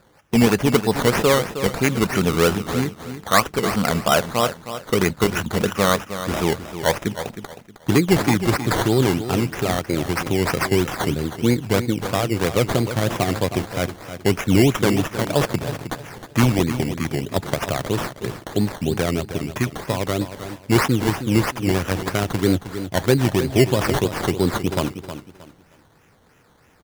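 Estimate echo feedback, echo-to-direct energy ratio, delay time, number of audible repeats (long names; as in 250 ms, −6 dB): 28%, −10.5 dB, 314 ms, 3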